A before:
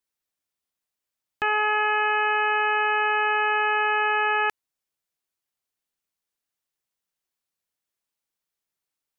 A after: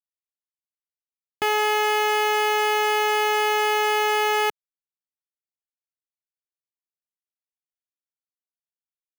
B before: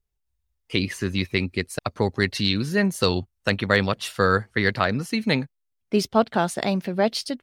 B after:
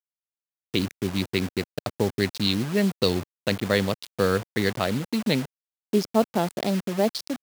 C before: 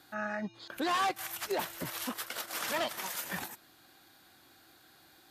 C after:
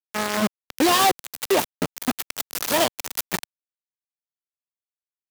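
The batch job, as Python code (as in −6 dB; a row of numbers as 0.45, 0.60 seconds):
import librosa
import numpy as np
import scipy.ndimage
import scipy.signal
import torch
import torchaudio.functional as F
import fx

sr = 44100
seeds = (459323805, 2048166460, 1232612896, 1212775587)

y = fx.wiener(x, sr, points=25)
y = fx.peak_eq(y, sr, hz=1400.0, db=-9.0, octaves=1.6)
y = fx.quant_dither(y, sr, seeds[0], bits=6, dither='none')
y = fx.highpass(y, sr, hz=140.0, slope=6)
y = y * 10.0 ** (-26 / 20.0) / np.sqrt(np.mean(np.square(y)))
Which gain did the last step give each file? +7.0, +1.5, +16.0 decibels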